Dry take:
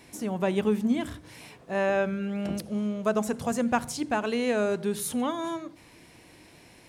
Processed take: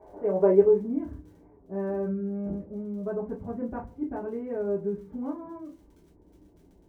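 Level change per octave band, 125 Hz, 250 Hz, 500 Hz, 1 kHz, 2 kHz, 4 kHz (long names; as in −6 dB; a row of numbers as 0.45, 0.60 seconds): −2.0 dB, −3.0 dB, +3.0 dB, −9.0 dB, −17.5 dB, below −30 dB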